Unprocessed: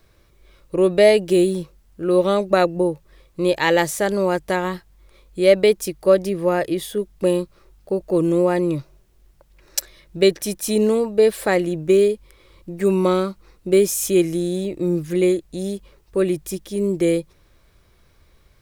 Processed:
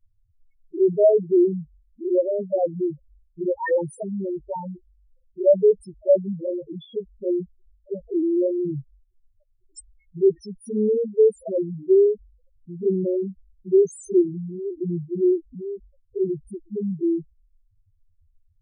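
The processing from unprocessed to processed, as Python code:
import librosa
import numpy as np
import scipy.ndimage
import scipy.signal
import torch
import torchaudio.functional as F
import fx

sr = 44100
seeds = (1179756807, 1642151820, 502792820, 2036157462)

y = fx.env_flanger(x, sr, rest_ms=10.7, full_db=-12.5)
y = fx.spec_topn(y, sr, count=2)
y = y * 10.0 ** (1.0 / 20.0)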